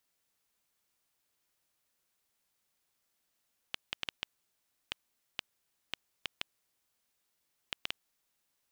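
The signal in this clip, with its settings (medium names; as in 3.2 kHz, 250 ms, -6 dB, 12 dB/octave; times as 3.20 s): random clicks 2.8 per s -15.5 dBFS 4.51 s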